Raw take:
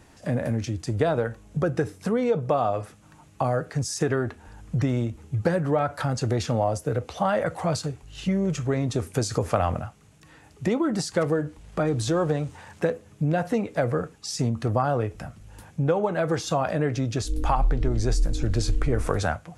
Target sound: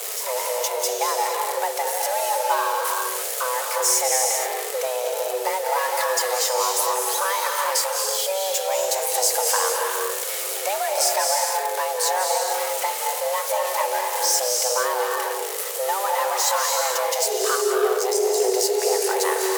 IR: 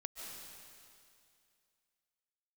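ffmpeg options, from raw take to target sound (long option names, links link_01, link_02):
-filter_complex "[0:a]aeval=exprs='val(0)+0.5*0.0398*sgn(val(0))':channel_layout=same,crystalizer=i=4:c=0[link_01];[1:a]atrim=start_sample=2205,afade=type=out:start_time=0.41:duration=0.01,atrim=end_sample=18522,asetrate=33075,aresample=44100[link_02];[link_01][link_02]afir=irnorm=-1:irlink=0,afreqshift=380,volume=-1dB"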